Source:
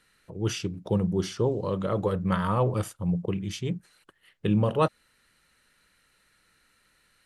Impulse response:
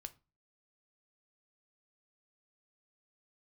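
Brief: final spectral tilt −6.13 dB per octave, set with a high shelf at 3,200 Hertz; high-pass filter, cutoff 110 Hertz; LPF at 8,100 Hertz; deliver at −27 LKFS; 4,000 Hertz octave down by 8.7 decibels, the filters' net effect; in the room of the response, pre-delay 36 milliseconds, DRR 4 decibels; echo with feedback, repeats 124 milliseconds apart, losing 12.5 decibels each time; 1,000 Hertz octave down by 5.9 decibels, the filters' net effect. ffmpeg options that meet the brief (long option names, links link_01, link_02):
-filter_complex "[0:a]highpass=110,lowpass=8100,equalizer=frequency=1000:width_type=o:gain=-6,highshelf=frequency=3200:gain=-7.5,equalizer=frequency=4000:width_type=o:gain=-6,aecho=1:1:124|248|372:0.237|0.0569|0.0137,asplit=2[link_01][link_02];[1:a]atrim=start_sample=2205,adelay=36[link_03];[link_02][link_03]afir=irnorm=-1:irlink=0,volume=1.5dB[link_04];[link_01][link_04]amix=inputs=2:normalize=0,volume=0.5dB"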